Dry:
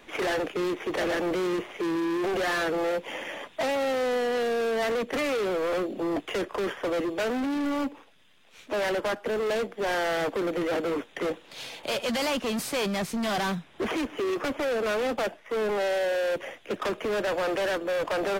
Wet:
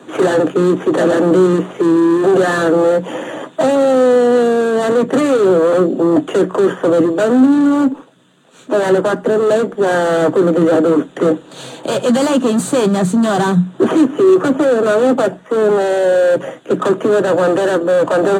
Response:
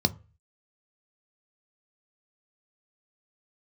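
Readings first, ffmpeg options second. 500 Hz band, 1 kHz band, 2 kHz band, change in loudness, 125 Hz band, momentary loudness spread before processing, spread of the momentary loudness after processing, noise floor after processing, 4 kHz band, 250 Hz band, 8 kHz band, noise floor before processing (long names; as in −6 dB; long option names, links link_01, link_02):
+15.5 dB, +12.0 dB, +8.0 dB, +15.0 dB, +19.5 dB, 5 LU, 6 LU, −42 dBFS, +5.0 dB, +17.5 dB, +11.0 dB, −54 dBFS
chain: -filter_complex "[1:a]atrim=start_sample=2205,asetrate=74970,aresample=44100[link_01];[0:a][link_01]afir=irnorm=-1:irlink=0,volume=3dB"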